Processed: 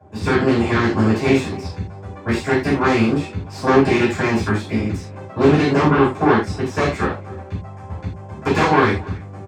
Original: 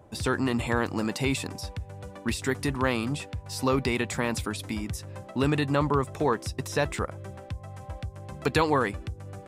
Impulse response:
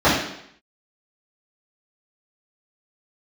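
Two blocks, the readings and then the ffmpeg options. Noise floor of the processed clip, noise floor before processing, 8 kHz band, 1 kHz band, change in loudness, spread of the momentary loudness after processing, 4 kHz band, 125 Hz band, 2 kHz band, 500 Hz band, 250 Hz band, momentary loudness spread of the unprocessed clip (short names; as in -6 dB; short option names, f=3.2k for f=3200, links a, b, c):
-36 dBFS, -47 dBFS, -0.5 dB, +10.0 dB, +10.5 dB, 16 LU, +5.0 dB, +9.0 dB, +9.5 dB, +10.5 dB, +11.5 dB, 14 LU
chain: -filter_complex "[0:a]aeval=exprs='0.282*(cos(1*acos(clip(val(0)/0.282,-1,1)))-cos(1*PI/2))+0.1*(cos(6*acos(clip(val(0)/0.282,-1,1)))-cos(6*PI/2))':c=same,asplit=2[a][b];[b]adelay=280,highpass=300,lowpass=3.4k,asoftclip=type=hard:threshold=-18dB,volume=-20dB[c];[a][c]amix=inputs=2:normalize=0[d];[1:a]atrim=start_sample=2205,atrim=end_sample=6174,asetrate=57330,aresample=44100[e];[d][e]afir=irnorm=-1:irlink=0,volume=-17.5dB"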